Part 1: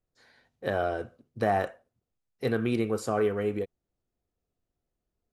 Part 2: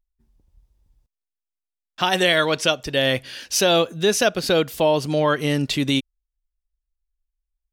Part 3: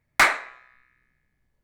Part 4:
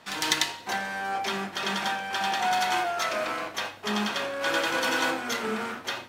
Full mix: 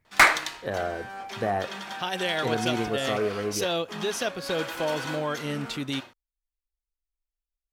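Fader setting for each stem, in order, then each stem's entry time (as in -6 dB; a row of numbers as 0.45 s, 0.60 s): -1.5 dB, -10.5 dB, +1.0 dB, -8.5 dB; 0.00 s, 0.00 s, 0.00 s, 0.05 s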